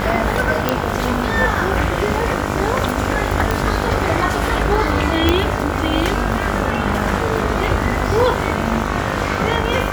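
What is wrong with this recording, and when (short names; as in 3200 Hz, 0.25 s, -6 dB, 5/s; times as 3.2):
buzz 50 Hz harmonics 31 -23 dBFS
crackle 87/s -24 dBFS
0.69 pop -1 dBFS
3.51 pop
5.29 pop -1 dBFS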